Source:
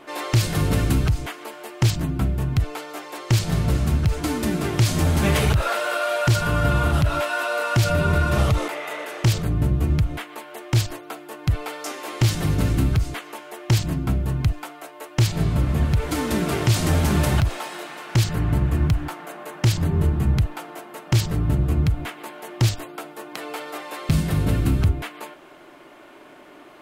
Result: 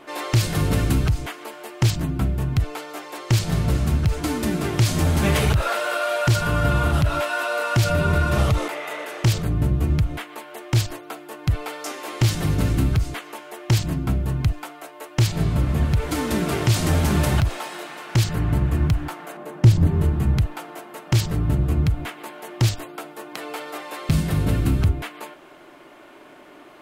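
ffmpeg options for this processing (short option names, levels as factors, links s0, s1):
-filter_complex "[0:a]asettb=1/sr,asplit=3[s0][s1][s2];[s0]atrim=end=19.374[s3];[s1]atrim=start=19.37:end=19.87,asetpts=PTS-STARTPTS,afade=t=in:d=0.004:c=qsin,afade=t=out:st=0.496:d=0.004:c=qsin,tiltshelf=f=650:g=6.5[s4];[s2]atrim=start=19.866[s5];[s3][s4]acrossfade=d=0.004:c1=hsin:c2=qsin[s6];[s6][s5]acrossfade=d=0.004:c1=qsin:c2=hsin"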